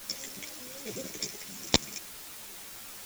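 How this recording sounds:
sample-and-hold tremolo
a quantiser's noise floor 8 bits, dither triangular
a shimmering, thickened sound

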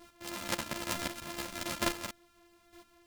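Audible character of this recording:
a buzz of ramps at a fixed pitch in blocks of 128 samples
chopped level 1.1 Hz, depth 65%, duty 10%
a shimmering, thickened sound

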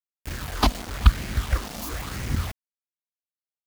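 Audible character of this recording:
phaser sweep stages 6, 1 Hz, lowest notch 100–1,100 Hz
a quantiser's noise floor 6 bits, dither none

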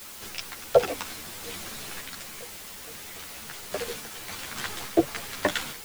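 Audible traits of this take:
sample-and-hold tremolo, depth 70%
a quantiser's noise floor 8 bits, dither triangular
a shimmering, thickened sound

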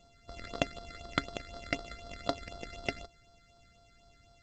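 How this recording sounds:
a buzz of ramps at a fixed pitch in blocks of 64 samples
phaser sweep stages 8, 4 Hz, lowest notch 800–2,500 Hz
G.722

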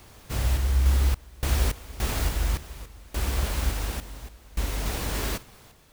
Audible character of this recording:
sample-and-hold tremolo 3.5 Hz, depth 95%

